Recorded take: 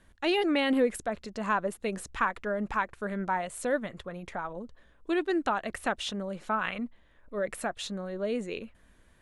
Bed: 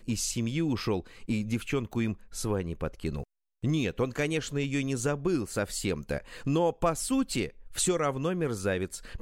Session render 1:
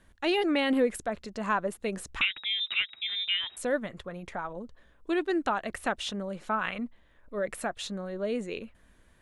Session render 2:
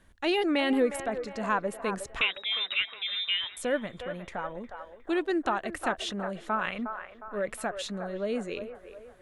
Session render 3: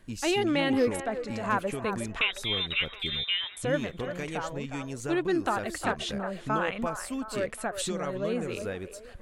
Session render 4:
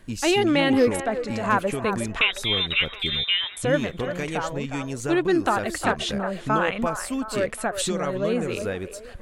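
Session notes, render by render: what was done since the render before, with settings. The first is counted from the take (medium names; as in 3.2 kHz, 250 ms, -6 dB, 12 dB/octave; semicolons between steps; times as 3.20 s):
2.21–3.57 s: frequency inversion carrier 3.8 kHz
feedback echo behind a band-pass 360 ms, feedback 45%, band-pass 910 Hz, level -7.5 dB
add bed -7 dB
trim +6 dB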